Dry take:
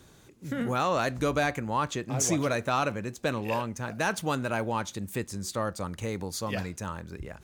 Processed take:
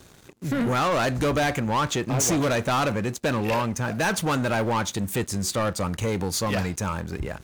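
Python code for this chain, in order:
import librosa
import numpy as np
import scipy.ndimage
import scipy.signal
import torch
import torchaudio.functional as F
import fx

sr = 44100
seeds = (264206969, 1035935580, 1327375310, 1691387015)

y = fx.leveller(x, sr, passes=3)
y = y * 10.0 ** (-1.5 / 20.0)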